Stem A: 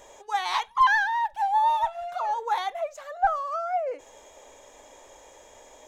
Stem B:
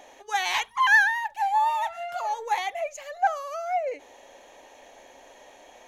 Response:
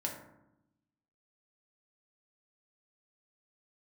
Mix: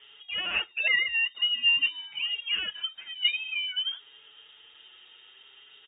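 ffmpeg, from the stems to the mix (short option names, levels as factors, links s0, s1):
-filter_complex "[0:a]asplit=2[s0][s1];[s1]adelay=7.3,afreqshift=-0.49[s2];[s0][s2]amix=inputs=2:normalize=1,volume=1.12,asplit=2[s3][s4];[1:a]acrusher=bits=7:dc=4:mix=0:aa=0.000001,volume=0.211[s5];[s4]apad=whole_len=259081[s6];[s5][s6]sidechaincompress=threshold=0.0316:ratio=8:attack=9.7:release=994[s7];[s3][s7]amix=inputs=2:normalize=0,lowpass=f=3100:t=q:w=0.5098,lowpass=f=3100:t=q:w=0.6013,lowpass=f=3100:t=q:w=0.9,lowpass=f=3100:t=q:w=2.563,afreqshift=-3700"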